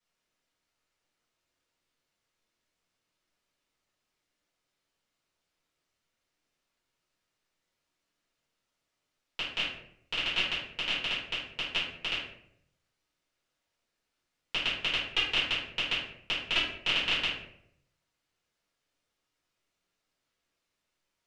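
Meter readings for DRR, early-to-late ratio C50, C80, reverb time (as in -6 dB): -10.5 dB, 2.5 dB, 6.5 dB, 0.70 s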